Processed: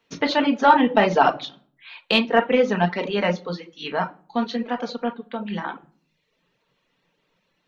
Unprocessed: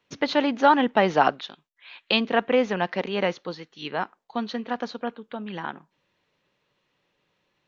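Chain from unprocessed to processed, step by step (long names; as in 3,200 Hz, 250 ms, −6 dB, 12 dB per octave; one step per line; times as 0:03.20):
rectangular room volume 510 cubic metres, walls furnished, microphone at 1.6 metres
in parallel at −10.5 dB: soft clipping −14.5 dBFS, distortion −11 dB
on the sum: reverb reduction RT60 0.71 s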